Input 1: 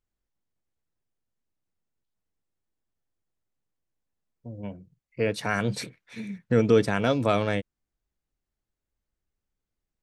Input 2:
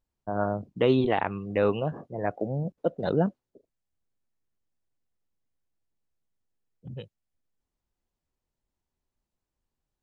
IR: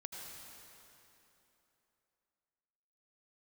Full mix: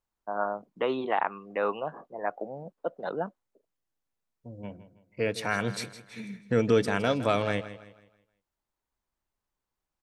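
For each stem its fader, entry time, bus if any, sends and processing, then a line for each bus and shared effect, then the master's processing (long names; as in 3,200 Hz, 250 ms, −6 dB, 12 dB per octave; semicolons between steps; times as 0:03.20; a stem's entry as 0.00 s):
−1.0 dB, 0.00 s, no send, echo send −14 dB, no processing
−9.0 dB, 0.00 s, no send, no echo send, high-pass filter 160 Hz 24 dB per octave; parametric band 1,100 Hz +13 dB 2 octaves; automatic ducking −6 dB, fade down 1.90 s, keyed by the first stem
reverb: not used
echo: repeating echo 161 ms, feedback 37%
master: low-shelf EQ 340 Hz −4.5 dB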